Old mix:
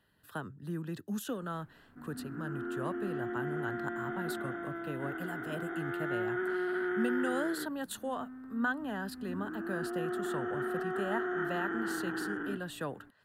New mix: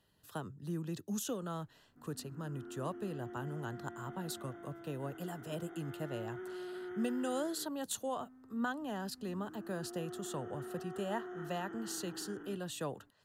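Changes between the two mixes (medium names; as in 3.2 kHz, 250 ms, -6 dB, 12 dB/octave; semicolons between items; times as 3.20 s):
background -9.0 dB; master: add fifteen-band graphic EQ 250 Hz -3 dB, 1.6 kHz -9 dB, 6.3 kHz +9 dB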